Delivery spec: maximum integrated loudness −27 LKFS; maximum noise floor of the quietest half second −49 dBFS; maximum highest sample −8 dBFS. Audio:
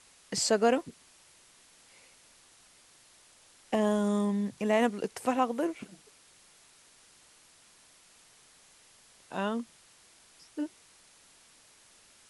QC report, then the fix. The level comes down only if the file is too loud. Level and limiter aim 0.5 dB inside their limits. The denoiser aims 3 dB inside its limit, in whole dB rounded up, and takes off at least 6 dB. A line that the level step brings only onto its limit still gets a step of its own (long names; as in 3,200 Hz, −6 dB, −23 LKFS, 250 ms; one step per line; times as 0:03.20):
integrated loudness −30.0 LKFS: in spec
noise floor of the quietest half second −60 dBFS: in spec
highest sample −13.5 dBFS: in spec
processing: no processing needed